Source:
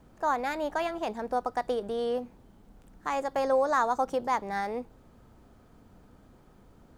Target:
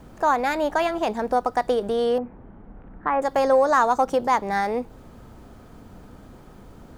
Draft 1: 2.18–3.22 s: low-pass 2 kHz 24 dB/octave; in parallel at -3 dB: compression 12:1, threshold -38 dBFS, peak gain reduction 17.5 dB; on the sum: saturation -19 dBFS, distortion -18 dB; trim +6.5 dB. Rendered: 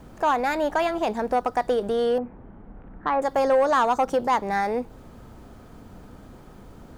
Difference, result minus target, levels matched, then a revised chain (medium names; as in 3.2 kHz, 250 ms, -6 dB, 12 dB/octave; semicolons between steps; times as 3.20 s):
saturation: distortion +16 dB
2.18–3.22 s: low-pass 2 kHz 24 dB/octave; in parallel at -3 dB: compression 12:1, threshold -38 dBFS, peak gain reduction 17.5 dB; on the sum: saturation -9.5 dBFS, distortion -34 dB; trim +6.5 dB